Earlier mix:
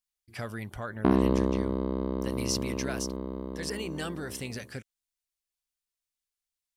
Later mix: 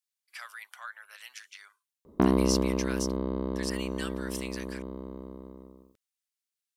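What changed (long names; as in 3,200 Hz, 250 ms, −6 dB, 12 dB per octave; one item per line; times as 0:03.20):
speech: add high-pass filter 1,100 Hz 24 dB per octave
background: entry +1.15 s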